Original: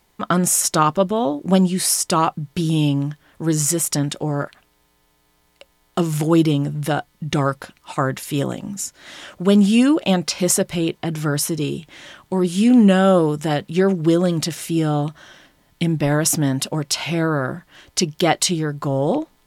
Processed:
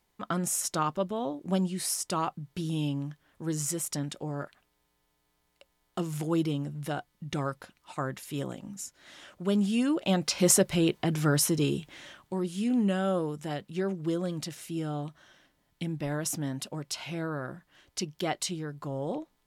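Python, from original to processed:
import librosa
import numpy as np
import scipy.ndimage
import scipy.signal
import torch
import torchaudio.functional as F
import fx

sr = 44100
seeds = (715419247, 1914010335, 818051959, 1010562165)

y = fx.gain(x, sr, db=fx.line((9.83, -12.5), (10.46, -4.0), (11.77, -4.0), (12.54, -14.0)))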